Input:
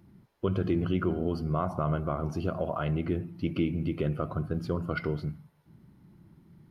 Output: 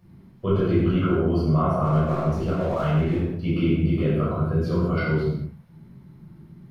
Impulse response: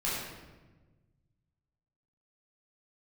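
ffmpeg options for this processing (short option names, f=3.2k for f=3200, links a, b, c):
-filter_complex "[0:a]asettb=1/sr,asplit=3[a][b][c];[a]atrim=end=1.844[d];[b]atrim=start=1.84:end=3.18,asetpts=PTS-STARTPTS,afade=t=in:d=0.004:c=qsin,afade=t=out:st=1.336:d=0.004:c=qsin,aeval=exprs='sgn(val(0))*max(abs(val(0))-0.00501,0)':c=same[e];[c]atrim=start=3.176[f];[d][e]acrossfade=d=0.004:c1=hsin:c2=qsin[g];[g][f]acrossfade=d=0.004:c1=qsin:c2=hsin[h];[1:a]atrim=start_sample=2205,afade=t=out:st=0.29:d=0.01,atrim=end_sample=13230[i];[h][i]afir=irnorm=-1:irlink=0"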